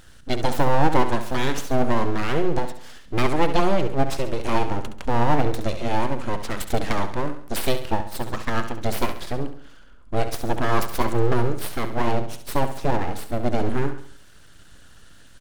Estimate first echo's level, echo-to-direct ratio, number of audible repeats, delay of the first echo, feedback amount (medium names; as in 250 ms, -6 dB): -10.0 dB, -9.0 dB, 4, 68 ms, 44%